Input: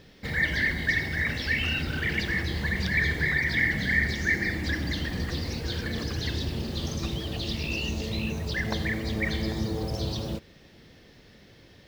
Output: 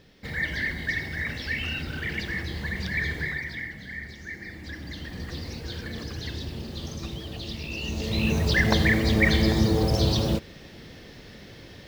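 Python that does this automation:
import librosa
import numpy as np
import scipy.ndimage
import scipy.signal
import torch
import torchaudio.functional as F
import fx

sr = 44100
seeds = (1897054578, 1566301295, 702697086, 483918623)

y = fx.gain(x, sr, db=fx.line((3.19, -3.0), (3.75, -13.0), (4.31, -13.0), (5.37, -4.0), (7.72, -4.0), (8.36, 8.0)))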